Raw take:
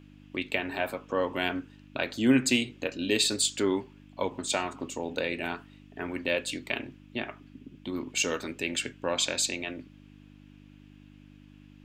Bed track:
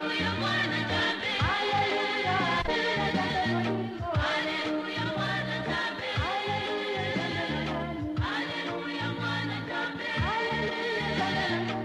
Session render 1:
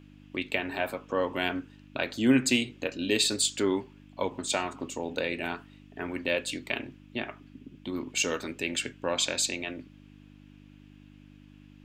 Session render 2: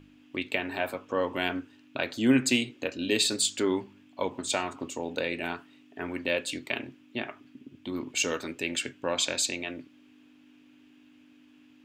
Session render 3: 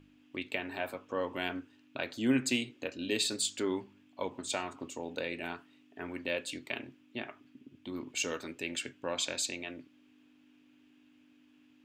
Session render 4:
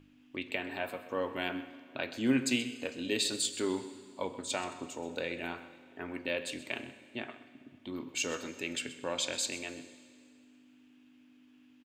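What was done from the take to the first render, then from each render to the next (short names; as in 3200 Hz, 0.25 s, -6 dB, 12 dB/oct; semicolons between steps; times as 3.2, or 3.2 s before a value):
nothing audible
de-hum 50 Hz, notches 4
gain -6 dB
echo 0.128 s -16.5 dB; Schroeder reverb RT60 2 s, combs from 32 ms, DRR 13.5 dB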